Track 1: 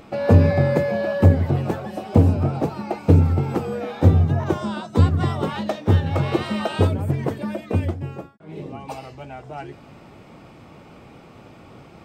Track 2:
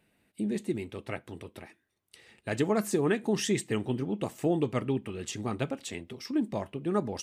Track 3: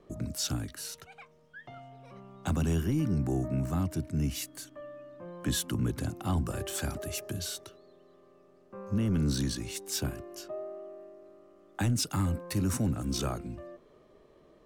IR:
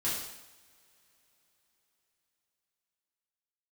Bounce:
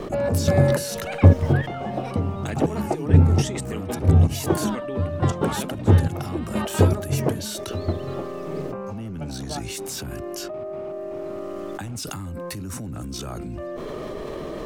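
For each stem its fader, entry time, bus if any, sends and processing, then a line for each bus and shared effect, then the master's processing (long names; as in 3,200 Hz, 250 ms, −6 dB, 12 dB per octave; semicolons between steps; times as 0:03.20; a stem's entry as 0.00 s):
+1.5 dB, 0.00 s, no send, low-pass filter 1,800 Hz 6 dB per octave; gate pattern ".xx..xxx.....x" 158 BPM −12 dB
+2.5 dB, 0.00 s, no send, Chebyshev high-pass filter 230 Hz; high-shelf EQ 2,300 Hz +3 dB; output level in coarse steps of 17 dB
+1.0 dB, 0.00 s, no send, brickwall limiter −29.5 dBFS, peak gain reduction 9.5 dB; envelope flattener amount 100%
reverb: not used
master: no processing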